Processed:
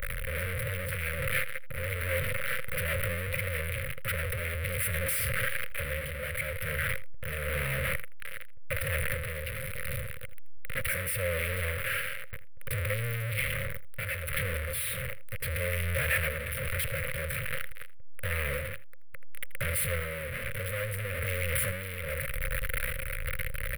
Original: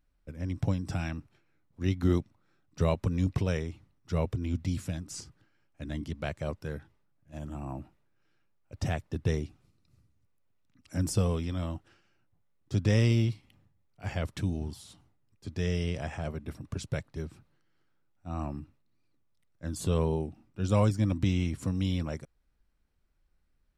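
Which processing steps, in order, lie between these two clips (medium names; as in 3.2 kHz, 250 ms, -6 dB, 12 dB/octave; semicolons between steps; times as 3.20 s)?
one-bit comparator; delay 81 ms -18 dB; random-step tremolo; transient shaper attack -9 dB, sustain +4 dB; FFT filter 130 Hz 0 dB, 340 Hz -25 dB, 530 Hz +10 dB, 780 Hz -24 dB, 1.3 kHz +2 dB, 2.1 kHz +12 dB, 6.7 kHz -22 dB, 9.7 kHz +6 dB; trim +3 dB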